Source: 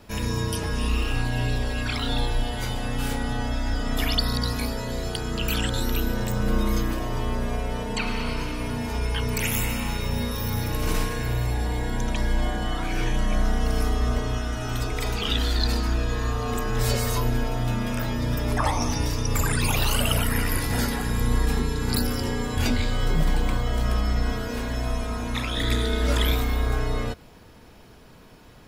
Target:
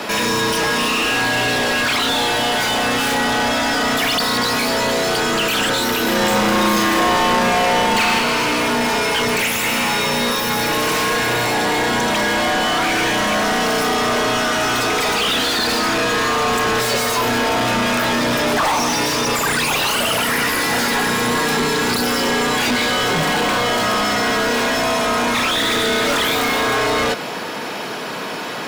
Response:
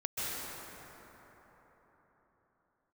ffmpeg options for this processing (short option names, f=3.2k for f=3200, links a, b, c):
-filter_complex "[0:a]highpass=f=140:w=0.5412,highpass=f=140:w=1.3066,asplit=2[a][b];[b]highpass=f=720:p=1,volume=37dB,asoftclip=type=tanh:threshold=-10.5dB[c];[a][c]amix=inputs=2:normalize=0,lowpass=f=4.2k:p=1,volume=-6dB,asettb=1/sr,asplit=3[d][e][f];[d]atrim=end=6.034[g];[e]atrim=start=6.03:end=8.19,asetpts=PTS-STARTPTS,afade=t=in:d=0.004:c=qsin,afade=t=out:st=2.156:d=0.004:c=qsin,asplit=2[h][i];[i]adelay=39,volume=-3dB[j];[h][j]amix=inputs=2:normalize=0,atrim=end_sample=95256[k];[f]atrim=start=8.186[l];[g][k]acrossfade=d=0.004:c1=hsin:c2=qsin[m];[m][l]acrossfade=d=0.004:c1=qsin:c2=hsin"